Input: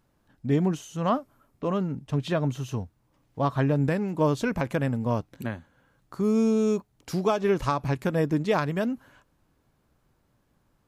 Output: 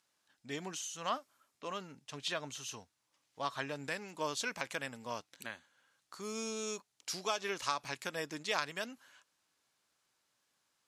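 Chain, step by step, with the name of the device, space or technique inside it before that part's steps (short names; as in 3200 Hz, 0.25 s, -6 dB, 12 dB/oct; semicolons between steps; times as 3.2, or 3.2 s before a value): piezo pickup straight into a mixer (LPF 6500 Hz 12 dB/oct; differentiator); gain +8 dB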